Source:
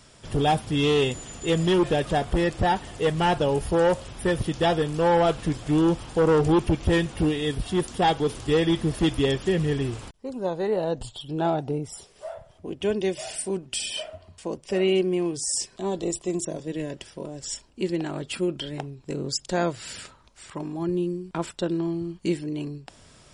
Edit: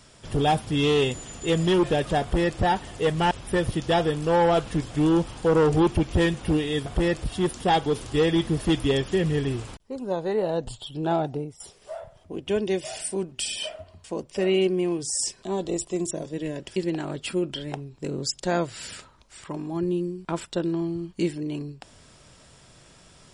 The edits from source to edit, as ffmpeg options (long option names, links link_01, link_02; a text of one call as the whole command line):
ffmpeg -i in.wav -filter_complex "[0:a]asplit=6[link_01][link_02][link_03][link_04][link_05][link_06];[link_01]atrim=end=3.312[link_07];[link_02]atrim=start=4.028:end=7.582[link_08];[link_03]atrim=start=2.218:end=2.602[link_09];[link_04]atrim=start=7.578:end=11.94,asetpts=PTS-STARTPTS,afade=type=out:start_time=4.052:duration=0.31:silence=0.177828[link_10];[link_05]atrim=start=11.94:end=17.102,asetpts=PTS-STARTPTS,afade=type=in:duration=0.004:curve=hsin:silence=0.177828[link_11];[link_06]atrim=start=17.818[link_12];[link_07][link_08]acrossfade=duration=0.004:curve1=hsin:curve2=hsin[link_13];[link_13][link_09]acrossfade=duration=0.004:curve1=hsin:curve2=hsin[link_14];[link_10][link_11]concat=n=2:v=0:a=1[link_15];[link_14][link_15]acrossfade=duration=0.004:curve1=hsin:curve2=hsin[link_16];[link_16][link_12]acrossfade=duration=0.004:curve1=hsin:curve2=hsin" out.wav